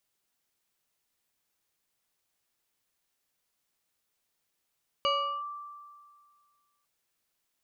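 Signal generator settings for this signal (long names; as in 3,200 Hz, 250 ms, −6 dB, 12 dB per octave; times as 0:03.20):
two-operator FM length 1.80 s, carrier 1,170 Hz, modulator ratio 1.48, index 1.2, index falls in 0.38 s linear, decay 1.93 s, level −22.5 dB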